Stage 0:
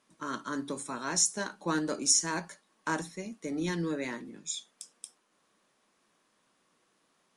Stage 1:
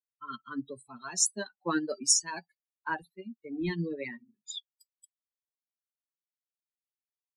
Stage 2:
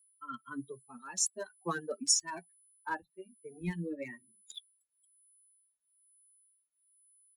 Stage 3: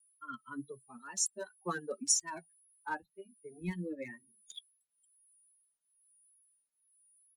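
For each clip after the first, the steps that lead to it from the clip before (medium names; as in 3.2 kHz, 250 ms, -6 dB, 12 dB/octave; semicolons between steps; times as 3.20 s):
expander on every frequency bin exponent 3; trim +4.5 dB
local Wiener filter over 9 samples; whistle 10 kHz -63 dBFS; endless flanger 2 ms +1.1 Hz
wow and flutter 61 cents; trim -1.5 dB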